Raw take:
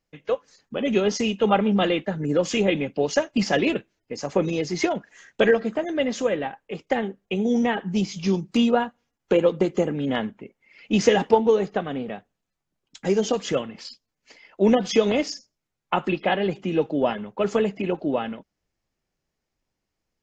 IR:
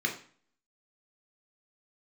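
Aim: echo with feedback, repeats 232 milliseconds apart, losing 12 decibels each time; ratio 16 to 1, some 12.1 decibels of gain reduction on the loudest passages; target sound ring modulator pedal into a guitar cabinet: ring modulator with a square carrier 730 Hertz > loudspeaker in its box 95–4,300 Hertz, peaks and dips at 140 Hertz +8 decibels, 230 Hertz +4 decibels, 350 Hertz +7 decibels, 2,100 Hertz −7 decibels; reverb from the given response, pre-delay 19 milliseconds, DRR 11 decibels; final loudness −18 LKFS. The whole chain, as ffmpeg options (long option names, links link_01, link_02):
-filter_complex "[0:a]acompressor=threshold=-25dB:ratio=16,aecho=1:1:232|464|696:0.251|0.0628|0.0157,asplit=2[link_01][link_02];[1:a]atrim=start_sample=2205,adelay=19[link_03];[link_02][link_03]afir=irnorm=-1:irlink=0,volume=-19dB[link_04];[link_01][link_04]amix=inputs=2:normalize=0,aeval=exprs='val(0)*sgn(sin(2*PI*730*n/s))':channel_layout=same,highpass=95,equalizer=frequency=140:width_type=q:width=4:gain=8,equalizer=frequency=230:width_type=q:width=4:gain=4,equalizer=frequency=350:width_type=q:width=4:gain=7,equalizer=frequency=2100:width_type=q:width=4:gain=-7,lowpass=frequency=4300:width=0.5412,lowpass=frequency=4300:width=1.3066,volume=11.5dB"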